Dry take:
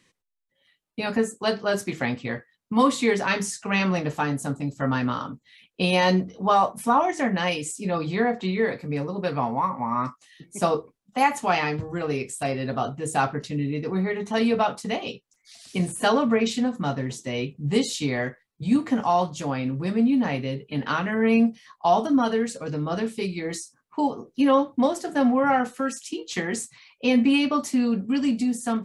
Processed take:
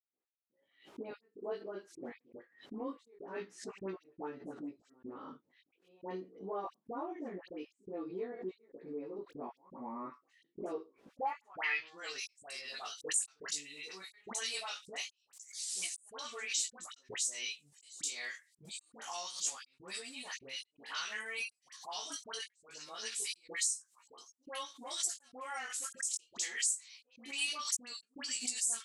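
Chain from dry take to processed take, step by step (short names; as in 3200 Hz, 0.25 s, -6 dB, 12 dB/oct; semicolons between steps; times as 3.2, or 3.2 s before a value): dynamic EQ 380 Hz, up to +8 dB, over -38 dBFS, Q 1.6; band-pass sweep 340 Hz -> 7900 Hz, 10.97–12.15; compressor 3:1, threshold -48 dBFS, peak gain reduction 23 dB; step gate ".x..xxxxx..xxxx" 122 bpm -60 dB; tilt shelf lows -9 dB, about 680 Hz; dispersion highs, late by 85 ms, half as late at 1200 Hz; chorus 0.25 Hz, delay 15.5 ms, depth 5.4 ms; backwards sustainer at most 130 dB/s; gain +9 dB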